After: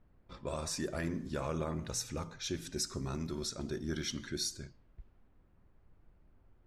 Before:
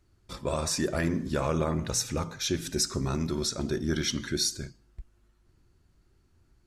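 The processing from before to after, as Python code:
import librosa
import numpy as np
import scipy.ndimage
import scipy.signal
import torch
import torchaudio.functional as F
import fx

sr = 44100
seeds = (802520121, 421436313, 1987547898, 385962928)

y = fx.dmg_noise_colour(x, sr, seeds[0], colour='brown', level_db=-54.0)
y = fx.env_lowpass(y, sr, base_hz=1900.0, full_db=-26.0)
y = y * librosa.db_to_amplitude(-8.5)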